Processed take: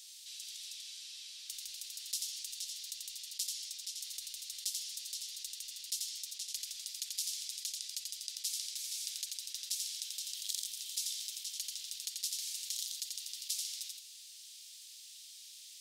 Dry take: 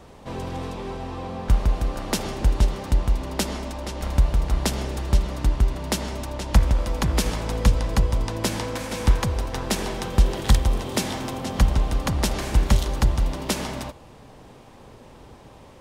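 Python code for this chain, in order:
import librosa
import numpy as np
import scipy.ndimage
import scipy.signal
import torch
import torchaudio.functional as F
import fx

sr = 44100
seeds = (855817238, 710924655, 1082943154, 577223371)

y = scipy.signal.sosfilt(scipy.signal.cheby2(4, 70, 900.0, 'highpass', fs=sr, output='sos'), x)
y = y + 10.0 ** (-5.5 / 20.0) * np.pad(y, (int(87 * sr / 1000.0), 0))[:len(y)]
y = fx.env_flatten(y, sr, amount_pct=50)
y = F.gain(torch.from_numpy(y), -8.0).numpy()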